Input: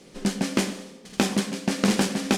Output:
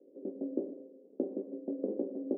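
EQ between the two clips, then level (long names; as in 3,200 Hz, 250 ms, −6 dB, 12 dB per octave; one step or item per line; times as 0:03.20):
Chebyshev band-pass filter 270–570 Hz, order 3
high-frequency loss of the air 180 metres
−5.5 dB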